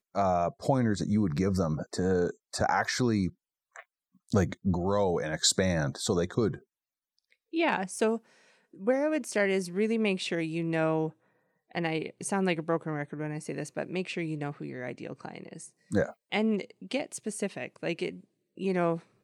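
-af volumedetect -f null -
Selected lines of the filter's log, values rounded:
mean_volume: -30.5 dB
max_volume: -10.9 dB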